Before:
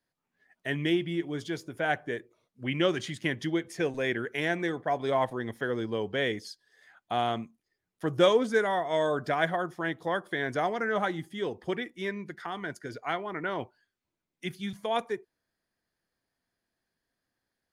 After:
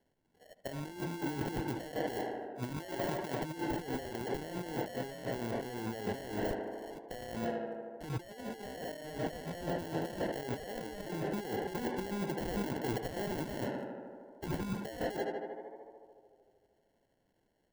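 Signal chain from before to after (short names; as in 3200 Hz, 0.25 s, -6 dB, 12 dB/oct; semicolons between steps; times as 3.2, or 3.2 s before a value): 13.27–14.68 high shelf 3400 Hz +11 dB; sample-and-hold 36×; 2.77–3.41 low shelf 250 Hz -11 dB; tape echo 75 ms, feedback 85%, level -13 dB, low-pass 2500 Hz; negative-ratio compressor -39 dBFS, ratio -1; 9.6–10.23 notch 2100 Hz, Q 16; de-esser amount 100%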